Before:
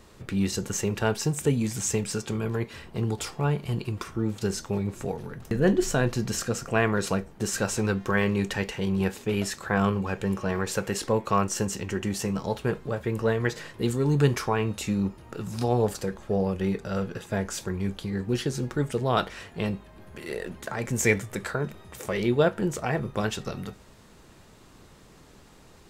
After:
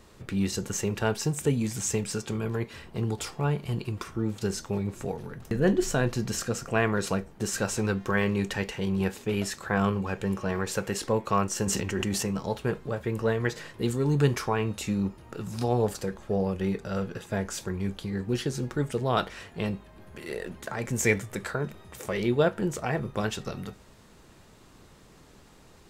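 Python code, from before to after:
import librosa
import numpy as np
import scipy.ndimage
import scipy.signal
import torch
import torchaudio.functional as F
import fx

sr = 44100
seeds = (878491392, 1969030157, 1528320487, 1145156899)

y = fx.sustainer(x, sr, db_per_s=28.0, at=(11.66, 12.24), fade=0.02)
y = y * librosa.db_to_amplitude(-1.5)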